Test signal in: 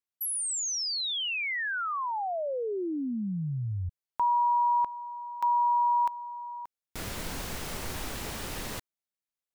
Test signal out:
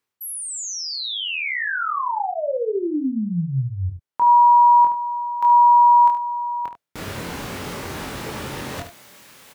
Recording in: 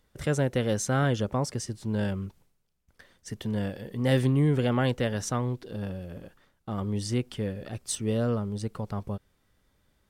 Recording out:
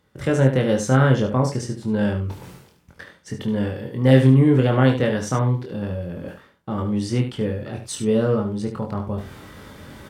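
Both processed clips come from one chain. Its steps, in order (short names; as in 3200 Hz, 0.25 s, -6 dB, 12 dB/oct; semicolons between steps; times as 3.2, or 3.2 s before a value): HPF 82 Hz; high shelf 3600 Hz -9.5 dB; notch 690 Hz, Q 14; reverse; upward compressor 4:1, threshold -37 dBFS; reverse; doubler 23 ms -4 dB; early reflections 30 ms -13.5 dB, 73 ms -9 dB; gain +6.5 dB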